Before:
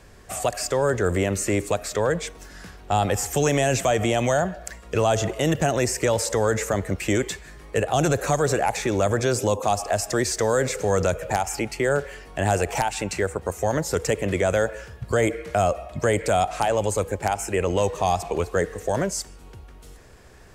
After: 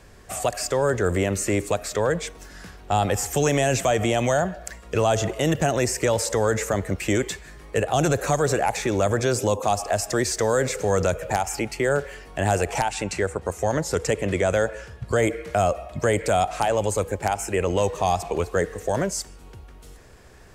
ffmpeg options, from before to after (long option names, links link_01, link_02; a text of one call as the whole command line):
ffmpeg -i in.wav -filter_complex "[0:a]asettb=1/sr,asplit=3[link_01][link_02][link_03];[link_01]atrim=end=12.704[link_04];[link_02]atrim=start=12.7:end=15.16,asetpts=PTS-STARTPTS,afade=type=in:duration=0.004:curve=qsin,afade=type=out:start_time=2.456:duration=0.004:curve=qsin,lowpass=11000[link_05];[link_03]atrim=start=15.156[link_06];[link_04][link_05]acrossfade=duration=0.004:curve1=hsin:curve2=qsin[link_07];[link_07][link_06]acrossfade=duration=0.004:curve1=qsin:curve2=hsin" out.wav